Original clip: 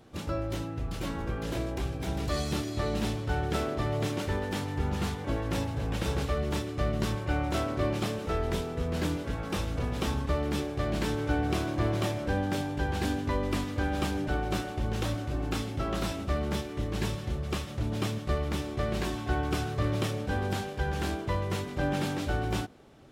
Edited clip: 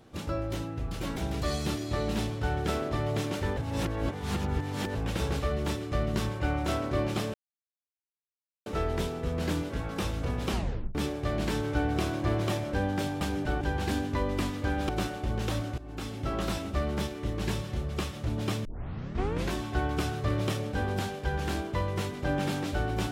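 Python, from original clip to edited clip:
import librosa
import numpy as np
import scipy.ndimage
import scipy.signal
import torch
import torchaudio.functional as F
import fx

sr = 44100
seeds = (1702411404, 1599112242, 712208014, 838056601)

y = fx.edit(x, sr, fx.cut(start_s=1.16, length_s=0.86),
    fx.reverse_span(start_s=4.43, length_s=1.38),
    fx.insert_silence(at_s=8.2, length_s=1.32),
    fx.tape_stop(start_s=10.03, length_s=0.46),
    fx.move(start_s=14.03, length_s=0.4, to_s=12.75),
    fx.fade_in_from(start_s=15.32, length_s=0.51, floor_db=-17.5),
    fx.tape_start(start_s=18.19, length_s=0.88), tone=tone)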